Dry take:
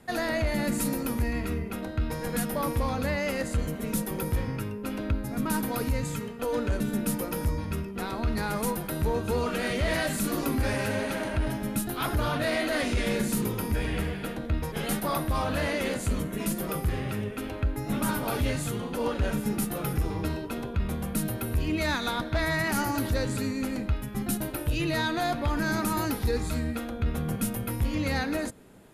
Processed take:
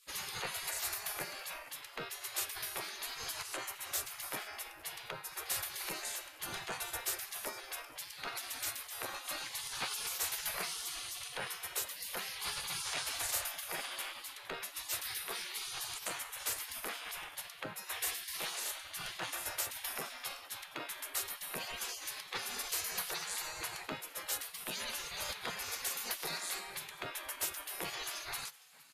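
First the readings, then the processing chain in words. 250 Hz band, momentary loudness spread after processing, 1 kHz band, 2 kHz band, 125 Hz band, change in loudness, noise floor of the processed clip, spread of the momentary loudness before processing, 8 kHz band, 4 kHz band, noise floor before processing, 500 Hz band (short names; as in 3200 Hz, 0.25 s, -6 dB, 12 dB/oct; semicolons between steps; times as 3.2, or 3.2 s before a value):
-28.0 dB, 7 LU, -11.0 dB, -8.0 dB, -29.0 dB, -9.5 dB, -52 dBFS, 5 LU, -0.5 dB, -1.5 dB, -37 dBFS, -18.5 dB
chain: spectral gate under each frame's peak -25 dB weak; frequency-shifting echo 0.463 s, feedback 31%, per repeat +130 Hz, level -21 dB; gain +3 dB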